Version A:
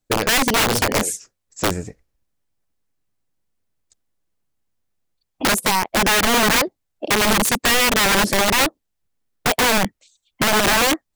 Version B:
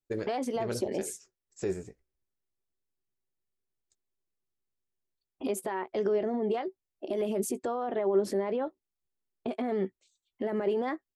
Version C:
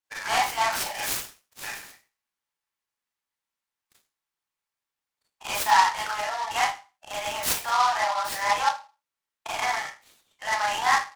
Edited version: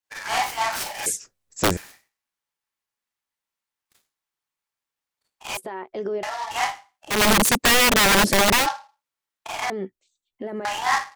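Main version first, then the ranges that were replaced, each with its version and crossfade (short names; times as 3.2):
C
1.06–1.77 from A
5.57–6.23 from B
7.14–8.63 from A, crossfade 0.16 s
9.7–10.65 from B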